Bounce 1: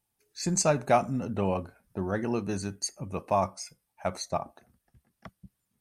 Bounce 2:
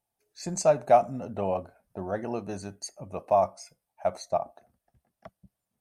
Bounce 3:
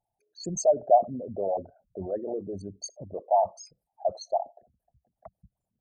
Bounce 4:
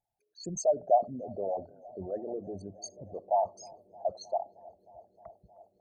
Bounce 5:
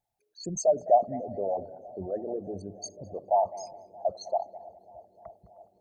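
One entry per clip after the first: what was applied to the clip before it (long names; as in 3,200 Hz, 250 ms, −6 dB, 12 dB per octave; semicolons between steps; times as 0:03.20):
parametric band 660 Hz +12 dB 0.79 octaves; level −6 dB
spectral envelope exaggerated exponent 3
delay with a low-pass on its return 311 ms, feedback 82%, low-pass 1,600 Hz, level −24 dB; level −4.5 dB
tape delay 209 ms, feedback 36%, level −16 dB, low-pass 1,500 Hz; level +3 dB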